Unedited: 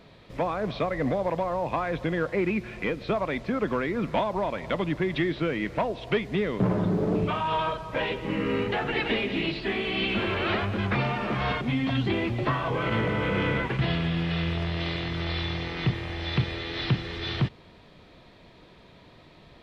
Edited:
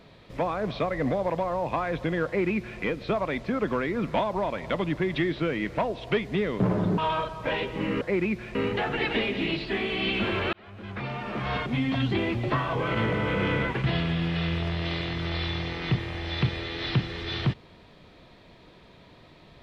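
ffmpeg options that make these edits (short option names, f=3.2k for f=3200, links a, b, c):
-filter_complex "[0:a]asplit=5[a][b][c][d][e];[a]atrim=end=6.982[f];[b]atrim=start=7.468:end=8.502[g];[c]atrim=start=2.258:end=2.802[h];[d]atrim=start=8.498:end=10.48,asetpts=PTS-STARTPTS,afade=t=out:st=1.978:d=0.004:c=hsin[i];[e]atrim=start=10.48,asetpts=PTS-STARTPTS,afade=t=in:d=1.24[j];[f][g]acrossfade=d=0.004:c1=hsin:c2=hsin[k];[k][h]acrossfade=d=0.004:c1=hsin:c2=hsin[l];[i][j]concat=n=2:v=0:a=1[m];[l][m]acrossfade=d=0.004:c1=hsin:c2=hsin"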